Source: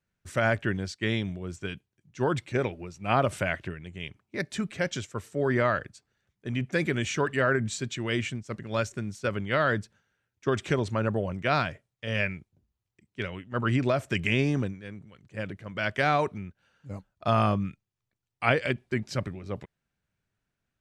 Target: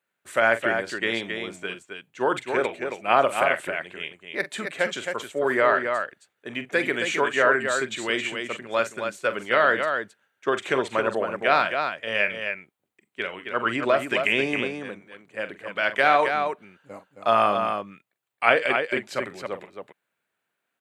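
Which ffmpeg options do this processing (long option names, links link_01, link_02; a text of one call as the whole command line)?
ffmpeg -i in.wav -af "highpass=450,equalizer=frequency=5500:width_type=o:width=0.64:gain=-11,aecho=1:1:43.73|268.2:0.251|0.501,volume=6.5dB" out.wav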